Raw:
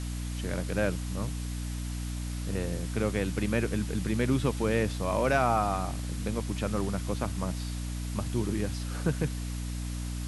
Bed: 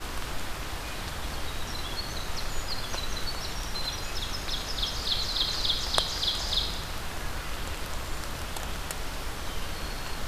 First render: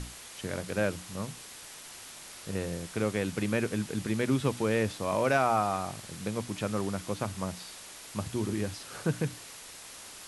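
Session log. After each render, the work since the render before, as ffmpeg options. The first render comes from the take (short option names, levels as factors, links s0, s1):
-af "bandreject=f=60:t=h:w=6,bandreject=f=120:t=h:w=6,bandreject=f=180:t=h:w=6,bandreject=f=240:t=h:w=6,bandreject=f=300:t=h:w=6"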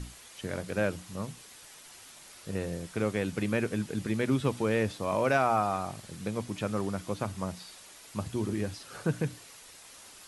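-af "afftdn=nr=6:nf=-47"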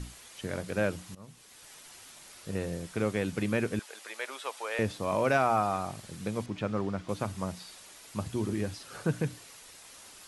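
-filter_complex "[0:a]asettb=1/sr,asplit=3[s0][s1][s2];[s0]atrim=end=3.794[s3];[s1]atrim=start=3.79:end=4.79,asetpts=PTS-STARTPTS,afade=t=in:d=0.004:c=qsin,afade=t=out:st=0.996:d=0.004:c=qsin,highpass=f=610:w=0.5412,highpass=f=610:w=1.3066[s4];[s2]atrim=start=4.786[s5];[s3][s4]acrossfade=d=0.004:c1=hsin:c2=qsin[s6];[s6][s5]acrossfade=d=0.004:c1=qsin:c2=hsin,asettb=1/sr,asplit=3[s7][s8][s9];[s7]atrim=end=6.464[s10];[s8]atrim=start=6.46:end=7.09,asetpts=PTS-STARTPTS,afade=t=in:d=0.004:c=qsin,afade=t=out:st=0.626:d=0.004:c=qsin,adynamicsmooth=sensitivity=3:basefreq=4500[s11];[s9]atrim=start=7.086[s12];[s10][s11]acrossfade=d=0.004:c1=hsin:c2=qsin[s13];[s13][s12]acrossfade=d=0.004:c1=qsin:c2=hsin,asplit=2[s14][s15];[s14]atrim=end=1.15,asetpts=PTS-STARTPTS,afade=t=out:st=1.146:d=0.004:c=hsin:silence=0.0944061[s16];[s15]atrim=start=1.15,asetpts=PTS-STARTPTS,afade=t=in:d=0.57:silence=0.0944061[s17];[s16][s17]concat=n=2:v=0:a=1"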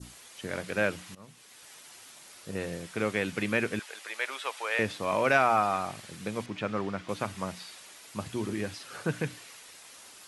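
-af "highpass=f=150:p=1,adynamicequalizer=threshold=0.00447:dfrequency=2200:dqfactor=0.74:tfrequency=2200:tqfactor=0.74:attack=5:release=100:ratio=0.375:range=3.5:mode=boostabove:tftype=bell"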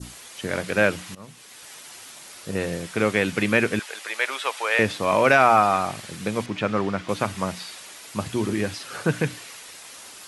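-af "volume=2.51,alimiter=limit=0.708:level=0:latency=1"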